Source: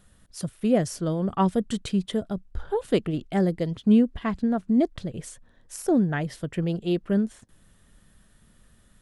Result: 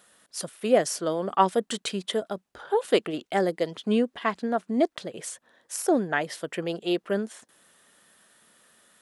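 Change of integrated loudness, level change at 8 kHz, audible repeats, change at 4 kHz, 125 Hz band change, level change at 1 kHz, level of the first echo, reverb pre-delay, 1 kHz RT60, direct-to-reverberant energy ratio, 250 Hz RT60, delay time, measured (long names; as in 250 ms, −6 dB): −1.5 dB, +5.5 dB, no echo audible, +5.5 dB, −11.0 dB, +5.0 dB, no echo audible, no reverb audible, no reverb audible, no reverb audible, no reverb audible, no echo audible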